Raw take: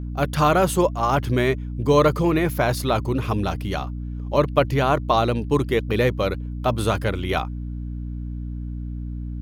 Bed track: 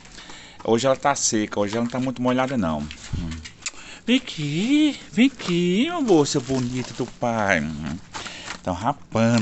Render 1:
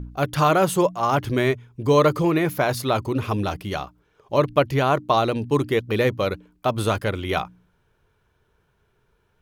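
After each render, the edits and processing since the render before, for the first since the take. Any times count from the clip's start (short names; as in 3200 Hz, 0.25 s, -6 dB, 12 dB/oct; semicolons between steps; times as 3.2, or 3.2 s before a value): de-hum 60 Hz, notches 5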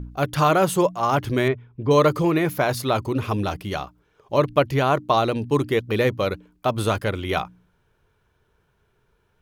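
1.48–1.91 air absorption 310 m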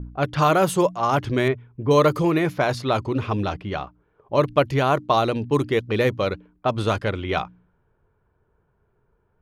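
low-pass opened by the level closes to 1200 Hz, open at -15 dBFS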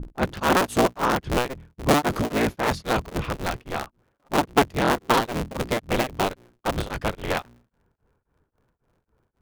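cycle switcher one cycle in 3, inverted; beating tremolo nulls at 3.7 Hz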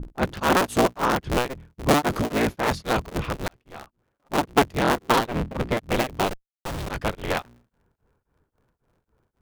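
3.48–4.56 fade in; 5.26–5.77 tone controls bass +3 dB, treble -10 dB; 6.28–6.89 Schmitt trigger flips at -38 dBFS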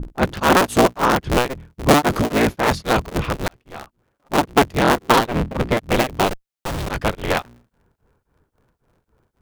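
gain +5.5 dB; limiter -1 dBFS, peak gain reduction 2.5 dB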